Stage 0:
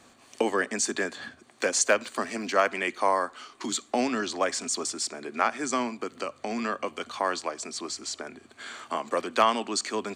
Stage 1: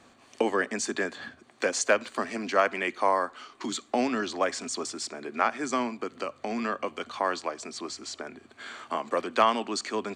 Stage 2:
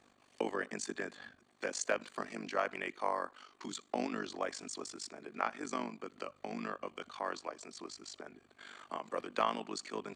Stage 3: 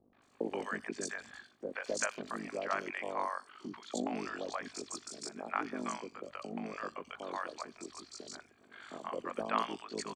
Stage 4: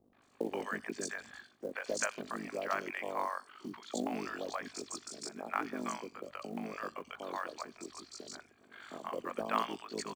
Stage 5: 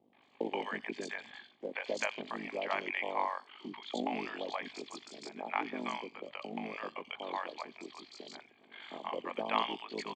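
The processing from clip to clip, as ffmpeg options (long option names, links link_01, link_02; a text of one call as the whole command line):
ffmpeg -i in.wav -af "highshelf=frequency=7000:gain=-11" out.wav
ffmpeg -i in.wav -af "tremolo=f=49:d=0.857,volume=-6.5dB" out.wav
ffmpeg -i in.wav -filter_complex "[0:a]acrossover=split=650|3500[link_01][link_02][link_03];[link_02]adelay=130[link_04];[link_03]adelay=220[link_05];[link_01][link_04][link_05]amix=inputs=3:normalize=0,volume=1.5dB" out.wav
ffmpeg -i in.wav -af "acrusher=bits=7:mode=log:mix=0:aa=0.000001" out.wav
ffmpeg -i in.wav -af "highpass=160,equalizer=frequency=860:width_type=q:width=4:gain=7,equalizer=frequency=1400:width_type=q:width=4:gain=-9,equalizer=frequency=2200:width_type=q:width=4:gain=8,equalizer=frequency=3200:width_type=q:width=4:gain=9,equalizer=frequency=5700:width_type=q:width=4:gain=-10,lowpass=frequency=5900:width=0.5412,lowpass=frequency=5900:width=1.3066" out.wav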